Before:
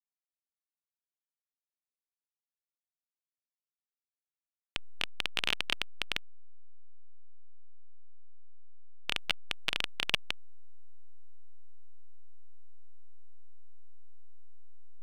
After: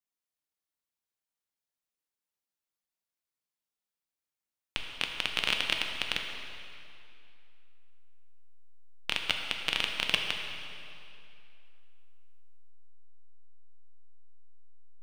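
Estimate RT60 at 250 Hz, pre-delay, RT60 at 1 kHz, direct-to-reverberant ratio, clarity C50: 2.7 s, 3 ms, 2.7 s, 2.0 dB, 4.0 dB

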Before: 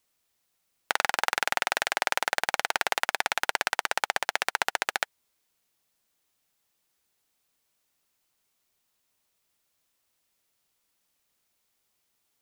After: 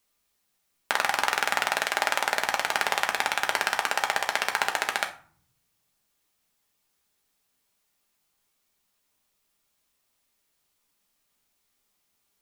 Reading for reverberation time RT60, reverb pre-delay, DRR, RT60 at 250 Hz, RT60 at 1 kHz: 0.50 s, 5 ms, 3.0 dB, 1.1 s, 0.50 s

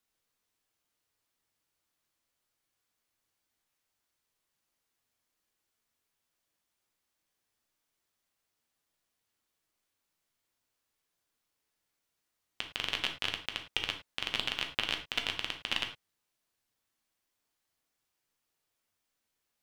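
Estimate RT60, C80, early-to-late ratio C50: non-exponential decay, 15.0 dB, 9.5 dB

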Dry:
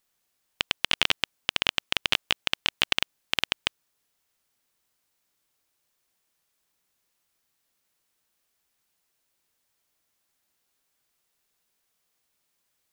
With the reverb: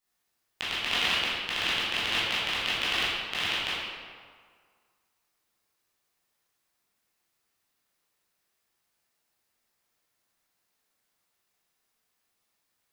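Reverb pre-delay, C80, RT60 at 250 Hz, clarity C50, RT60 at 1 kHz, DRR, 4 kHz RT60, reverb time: 13 ms, 0.0 dB, 1.7 s, −2.5 dB, 1.9 s, −11.0 dB, 1.1 s, 1.9 s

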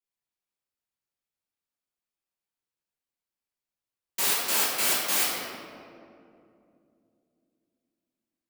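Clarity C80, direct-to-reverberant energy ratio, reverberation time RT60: 1.0 dB, −8.5 dB, 2.6 s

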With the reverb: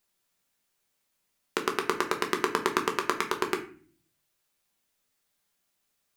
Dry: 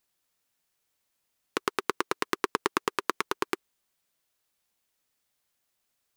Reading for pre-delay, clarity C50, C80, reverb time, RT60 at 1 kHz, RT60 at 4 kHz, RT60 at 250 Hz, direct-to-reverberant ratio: 5 ms, 11.5 dB, 15.0 dB, 0.45 s, 0.40 s, 0.30 s, 0.75 s, 3.0 dB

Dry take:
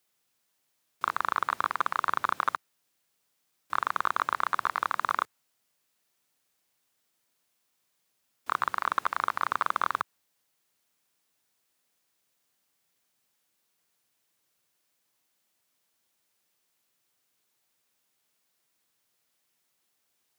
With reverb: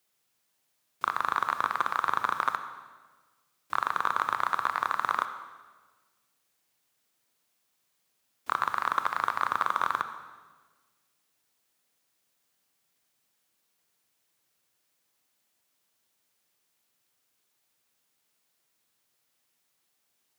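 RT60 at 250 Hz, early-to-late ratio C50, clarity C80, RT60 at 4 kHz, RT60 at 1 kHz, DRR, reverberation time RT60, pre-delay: 1.5 s, 10.0 dB, 11.5 dB, 1.3 s, 1.3 s, 9.0 dB, 1.4 s, 25 ms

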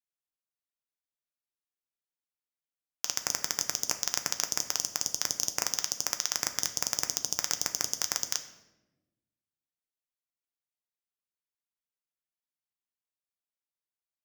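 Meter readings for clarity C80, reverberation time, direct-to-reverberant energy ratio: 13.0 dB, 1.0 s, 6.5 dB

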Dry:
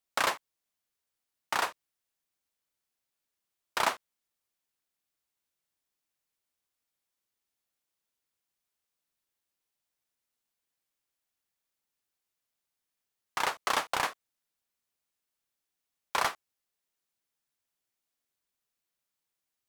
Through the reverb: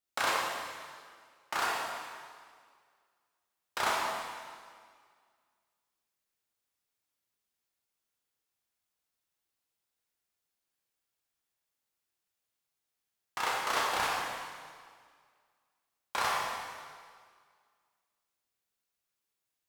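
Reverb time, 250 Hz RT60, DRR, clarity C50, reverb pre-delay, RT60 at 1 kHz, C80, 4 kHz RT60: 1.9 s, 1.9 s, −4.5 dB, −1.5 dB, 7 ms, 1.9 s, 1.0 dB, 1.8 s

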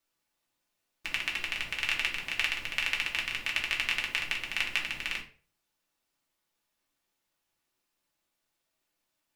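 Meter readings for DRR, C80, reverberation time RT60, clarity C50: −2.5 dB, 15.5 dB, 0.40 s, 10.0 dB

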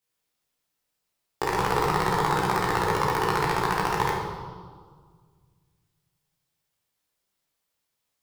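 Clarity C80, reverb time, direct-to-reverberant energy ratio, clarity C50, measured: 3.5 dB, 1.7 s, −6.5 dB, 1.0 dB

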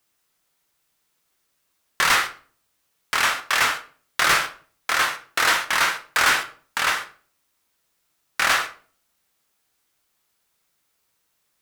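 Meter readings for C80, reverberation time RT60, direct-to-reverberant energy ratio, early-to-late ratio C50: 18.0 dB, 0.45 s, 6.0 dB, 13.5 dB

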